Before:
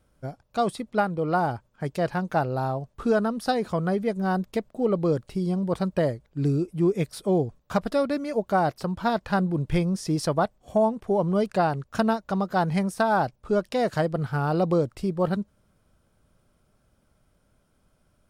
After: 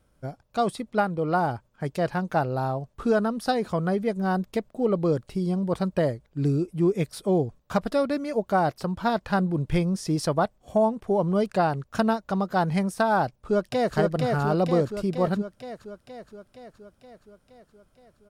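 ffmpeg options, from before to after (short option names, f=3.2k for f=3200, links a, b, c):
-filter_complex "[0:a]asplit=2[a][b];[b]afade=t=in:st=13.25:d=0.01,afade=t=out:st=13.96:d=0.01,aecho=0:1:470|940|1410|1880|2350|2820|3290|3760|4230|4700|5170:0.749894|0.487431|0.31683|0.20594|0.133861|0.0870095|0.0565562|0.0367615|0.023895|0.0155317|0.0100956[c];[a][c]amix=inputs=2:normalize=0"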